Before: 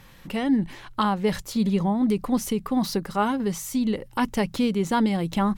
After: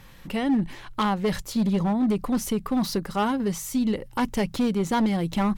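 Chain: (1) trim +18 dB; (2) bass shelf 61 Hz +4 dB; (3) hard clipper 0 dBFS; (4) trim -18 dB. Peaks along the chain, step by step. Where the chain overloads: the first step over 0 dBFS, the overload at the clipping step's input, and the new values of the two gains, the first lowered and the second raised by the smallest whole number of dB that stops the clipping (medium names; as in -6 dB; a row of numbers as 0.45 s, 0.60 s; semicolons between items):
+6.0 dBFS, +6.5 dBFS, 0.0 dBFS, -18.0 dBFS; step 1, 6.5 dB; step 1 +11 dB, step 4 -11 dB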